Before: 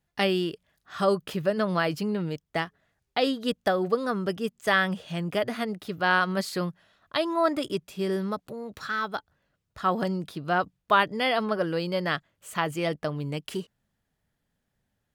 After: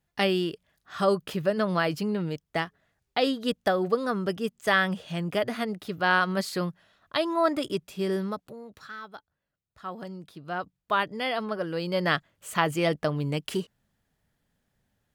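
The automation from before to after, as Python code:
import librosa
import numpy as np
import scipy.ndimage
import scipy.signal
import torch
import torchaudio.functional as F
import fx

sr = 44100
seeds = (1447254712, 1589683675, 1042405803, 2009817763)

y = fx.gain(x, sr, db=fx.line((8.19, 0.0), (9.01, -12.0), (9.95, -12.0), (11.03, -4.0), (11.68, -4.0), (12.08, 3.0)))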